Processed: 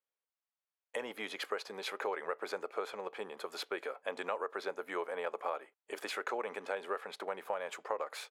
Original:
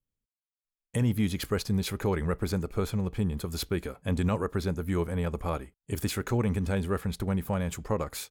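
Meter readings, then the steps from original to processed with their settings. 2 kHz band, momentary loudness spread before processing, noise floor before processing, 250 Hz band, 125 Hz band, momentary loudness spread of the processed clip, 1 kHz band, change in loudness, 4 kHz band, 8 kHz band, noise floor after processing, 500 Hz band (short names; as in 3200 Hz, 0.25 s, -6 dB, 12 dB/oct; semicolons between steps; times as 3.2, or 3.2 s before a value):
-1.0 dB, 5 LU, under -85 dBFS, -21.0 dB, under -35 dB, 5 LU, -1.0 dB, -9.0 dB, -5.0 dB, -12.0 dB, under -85 dBFS, -5.5 dB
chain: HPF 510 Hz 24 dB/oct; bell 6400 Hz -9 dB 2 oct; compressor 5:1, threshold -36 dBFS, peak gain reduction 8 dB; air absorption 68 m; gain +4 dB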